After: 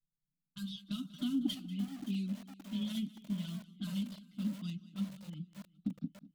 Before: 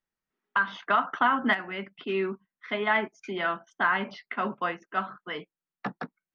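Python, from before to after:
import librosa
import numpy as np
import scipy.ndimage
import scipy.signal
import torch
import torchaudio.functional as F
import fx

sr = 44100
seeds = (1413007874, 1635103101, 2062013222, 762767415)

y = scipy.ndimage.median_filter(x, 5, mode='constant')
y = fx.env_lowpass(y, sr, base_hz=420.0, full_db=-22.5)
y = scipy.signal.sosfilt(scipy.signal.ellip(3, 1.0, 40, [200.0, 3900.0], 'bandstop', fs=sr, output='sos'), y)
y = fx.dynamic_eq(y, sr, hz=310.0, q=1.7, threshold_db=-56.0, ratio=4.0, max_db=8)
y = y + 0.42 * np.pad(y, (int(6.9 * sr / 1000.0), 0))[:len(y)]
y = fx.env_flanger(y, sr, rest_ms=6.7, full_db=-20.5)
y = fx.echo_feedback(y, sr, ms=192, feedback_pct=57, wet_db=-18)
y = fx.echo_crushed(y, sr, ms=572, feedback_pct=55, bits=8, wet_db=-12.5)
y = y * librosa.db_to_amplitude(6.0)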